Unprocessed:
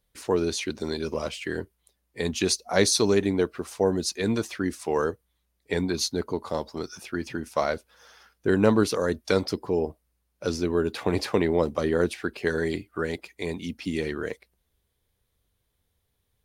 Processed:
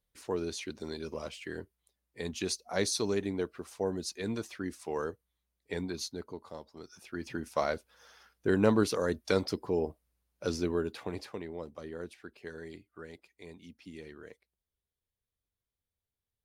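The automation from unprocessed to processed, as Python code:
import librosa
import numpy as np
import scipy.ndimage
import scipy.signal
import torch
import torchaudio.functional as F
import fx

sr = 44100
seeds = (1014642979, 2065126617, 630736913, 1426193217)

y = fx.gain(x, sr, db=fx.line((5.85, -9.5), (6.71, -17.0), (7.36, -5.0), (10.67, -5.0), (11.39, -18.0)))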